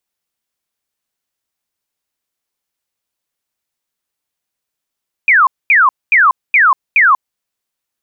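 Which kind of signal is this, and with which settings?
burst of laser zaps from 2.5 kHz, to 990 Hz, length 0.19 s sine, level -5.5 dB, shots 5, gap 0.23 s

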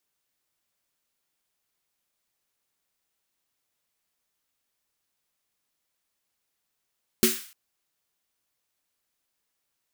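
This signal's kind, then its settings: snare drum length 0.30 s, tones 230 Hz, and 370 Hz, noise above 1.4 kHz, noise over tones -2 dB, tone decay 0.22 s, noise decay 0.49 s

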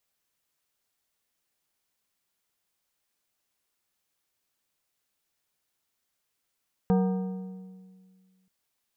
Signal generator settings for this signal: metal hit plate, length 1.58 s, lowest mode 187 Hz, modes 6, decay 1.95 s, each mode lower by 6 dB, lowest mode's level -19 dB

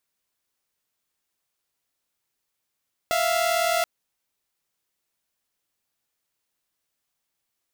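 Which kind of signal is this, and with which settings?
chord E5/F5 saw, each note -21 dBFS 0.73 s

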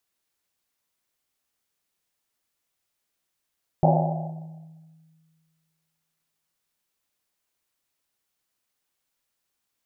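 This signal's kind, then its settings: Risset drum length 3.82 s, pitch 160 Hz, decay 2.00 s, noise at 690 Hz, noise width 270 Hz, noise 50%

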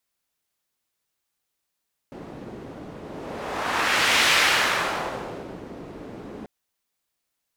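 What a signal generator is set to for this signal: whoosh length 4.34 s, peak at 2.17 s, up 1.42 s, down 1.43 s, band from 320 Hz, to 2.4 kHz, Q 1, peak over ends 20 dB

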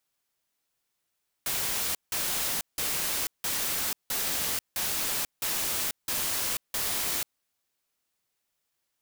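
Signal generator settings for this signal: noise bursts white, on 0.49 s, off 0.17 s, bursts 9, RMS -29.5 dBFS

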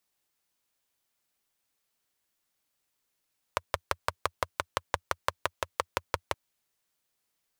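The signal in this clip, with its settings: single-cylinder engine model, steady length 2.77 s, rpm 700, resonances 87/580/1000 Hz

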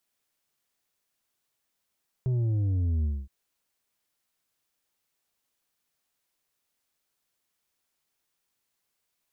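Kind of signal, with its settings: sub drop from 130 Hz, over 1.02 s, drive 6 dB, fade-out 0.24 s, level -24 dB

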